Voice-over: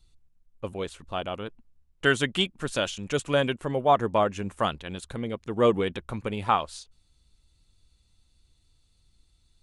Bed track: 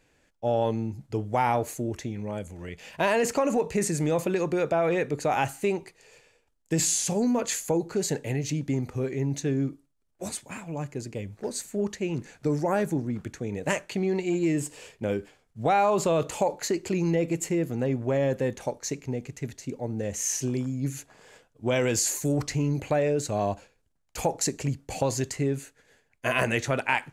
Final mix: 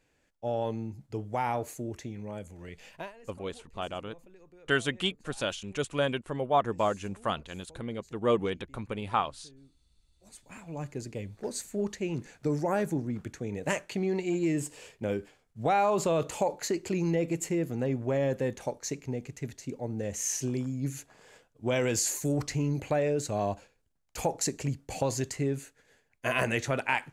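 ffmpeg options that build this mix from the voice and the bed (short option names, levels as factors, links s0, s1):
-filter_complex "[0:a]adelay=2650,volume=0.596[s0];[1:a]volume=11.2,afade=t=out:st=2.85:d=0.27:silence=0.0630957,afade=t=in:st=10.23:d=0.66:silence=0.0446684[s1];[s0][s1]amix=inputs=2:normalize=0"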